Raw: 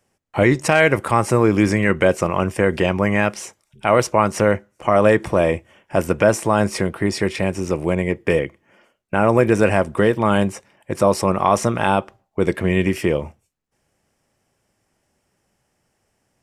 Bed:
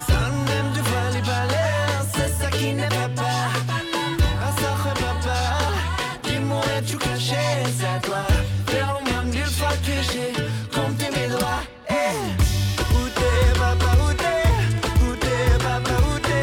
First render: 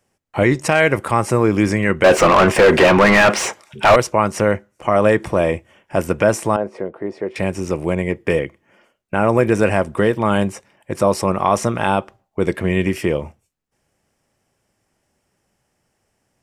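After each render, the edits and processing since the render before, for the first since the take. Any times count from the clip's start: 2.04–3.96 overdrive pedal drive 31 dB, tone 1800 Hz, clips at -2 dBFS; 6.56–7.36 band-pass 530 Hz, Q 1.4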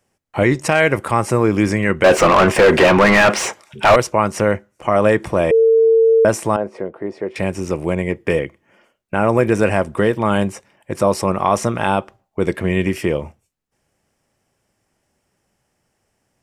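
5.51–6.25 bleep 451 Hz -8.5 dBFS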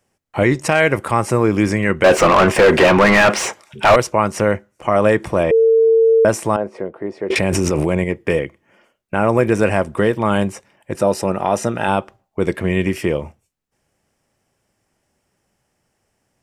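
5.43–6.02 air absorption 81 m; 7.3–8.04 fast leveller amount 100%; 10.95–11.88 notch comb 1100 Hz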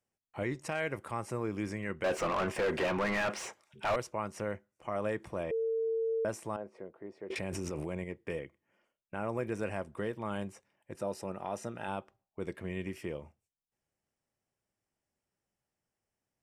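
gain -20 dB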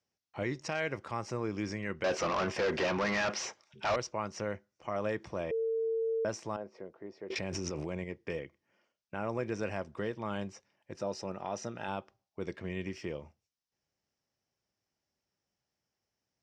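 HPF 40 Hz; resonant high shelf 7900 Hz -14 dB, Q 3

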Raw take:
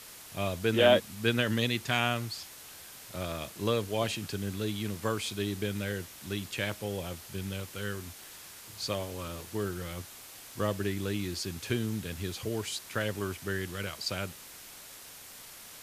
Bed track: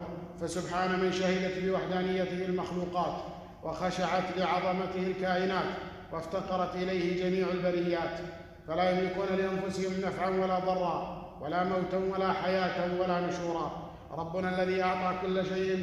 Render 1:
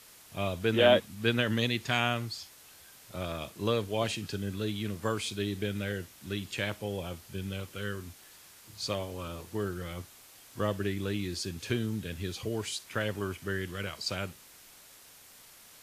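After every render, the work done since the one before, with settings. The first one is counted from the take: noise print and reduce 6 dB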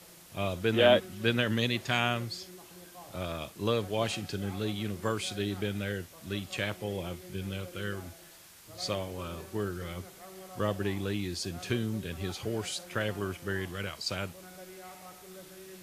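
add bed track -19 dB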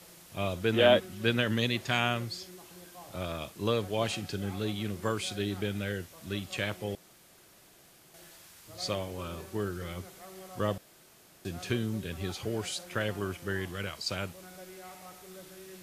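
6.95–8.14 room tone; 10.78–11.45 room tone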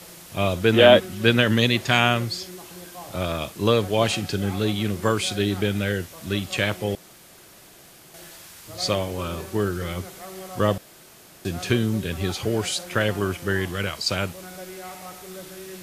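gain +9.5 dB; limiter -2 dBFS, peak gain reduction 1 dB

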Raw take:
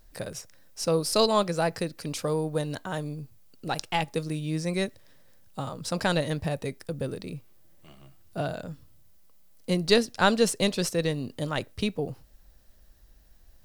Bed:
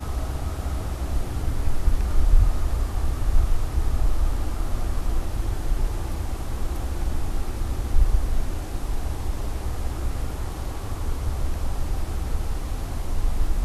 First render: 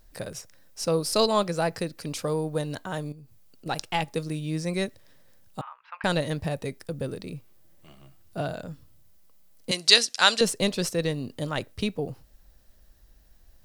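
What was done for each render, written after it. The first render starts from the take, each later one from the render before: 3.12–3.66 compressor 3:1, threshold -48 dBFS; 5.61–6.04 elliptic band-pass 940–2600 Hz, stop band 60 dB; 9.71–10.41 weighting filter ITU-R 468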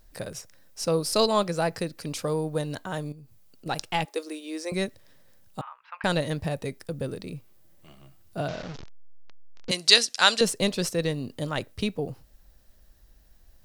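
4.05–4.72 steep high-pass 300 Hz 48 dB/oct; 8.48–9.7 delta modulation 32 kbps, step -33 dBFS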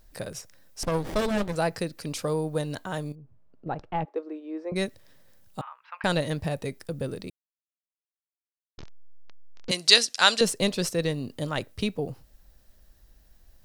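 0.83–1.56 running maximum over 33 samples; 3.15–4.76 LPF 1100 Hz; 7.3–8.78 mute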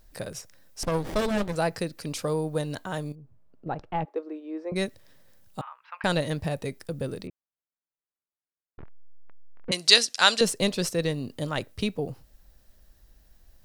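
7.27–9.72 LPF 1900 Hz 24 dB/oct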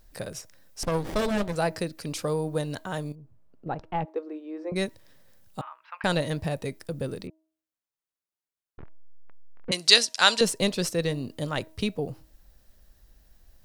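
de-hum 317.2 Hz, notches 3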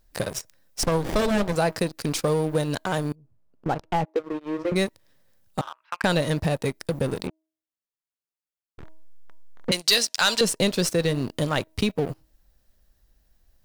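sample leveller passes 3; compressor 2:1, threshold -25 dBFS, peak gain reduction 10.5 dB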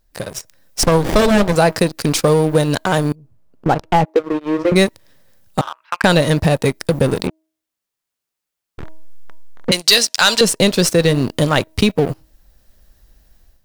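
AGC gain up to 12 dB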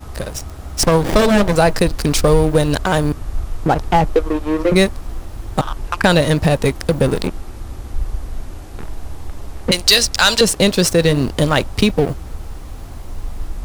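add bed -3 dB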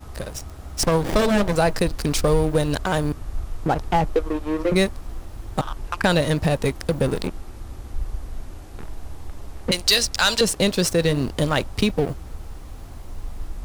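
gain -6 dB

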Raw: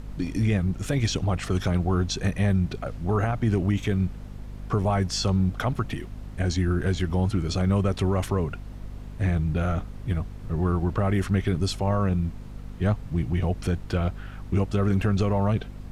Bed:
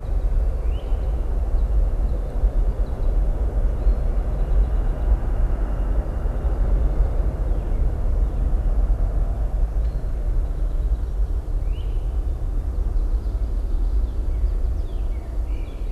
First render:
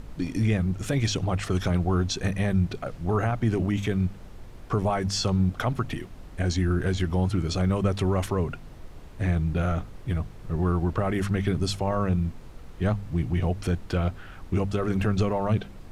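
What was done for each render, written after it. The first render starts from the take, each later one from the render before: de-hum 50 Hz, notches 5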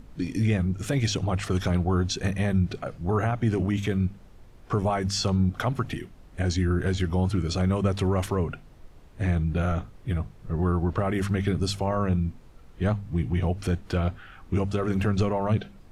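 noise print and reduce 7 dB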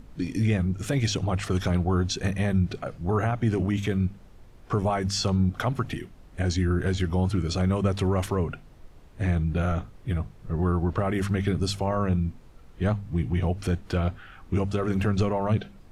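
nothing audible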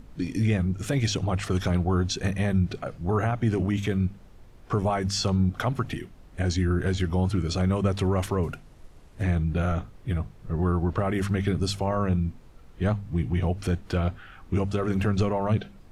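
8.43–9.23 CVSD 64 kbps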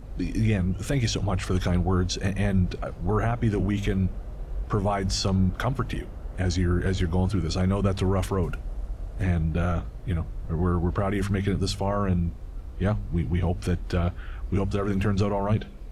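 add bed -13.5 dB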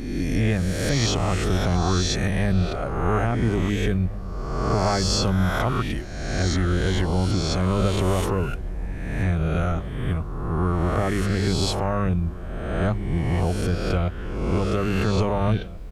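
spectral swells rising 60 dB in 1.31 s; outdoor echo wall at 290 m, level -17 dB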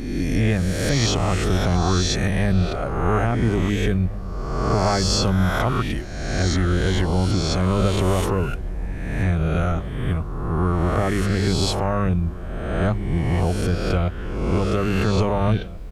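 gain +2 dB

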